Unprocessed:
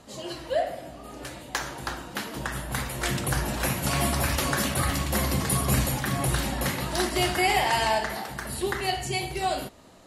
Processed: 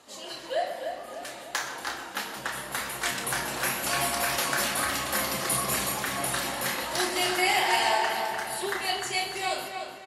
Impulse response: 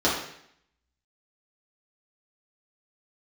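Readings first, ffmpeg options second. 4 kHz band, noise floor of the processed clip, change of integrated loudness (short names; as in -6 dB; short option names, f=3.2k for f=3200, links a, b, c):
+1.5 dB, -42 dBFS, -0.5 dB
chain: -filter_complex "[0:a]highpass=f=760:p=1,flanger=delay=2.3:depth=4.1:regen=-51:speed=1:shape=triangular,asplit=2[a][b];[b]adelay=30,volume=-7dB[c];[a][c]amix=inputs=2:normalize=0,asplit=2[d][e];[e]adelay=299,lowpass=f=3.8k:p=1,volume=-6dB,asplit=2[f][g];[g]adelay=299,lowpass=f=3.8k:p=1,volume=0.47,asplit=2[h][i];[i]adelay=299,lowpass=f=3.8k:p=1,volume=0.47,asplit=2[j][k];[k]adelay=299,lowpass=f=3.8k:p=1,volume=0.47,asplit=2[l][m];[m]adelay=299,lowpass=f=3.8k:p=1,volume=0.47,asplit=2[n][o];[o]adelay=299,lowpass=f=3.8k:p=1,volume=0.47[p];[d][f][h][j][l][n][p]amix=inputs=7:normalize=0,asplit=2[q][r];[1:a]atrim=start_sample=2205,asetrate=52920,aresample=44100,adelay=119[s];[r][s]afir=irnorm=-1:irlink=0,volume=-26dB[t];[q][t]amix=inputs=2:normalize=0,volume=4dB"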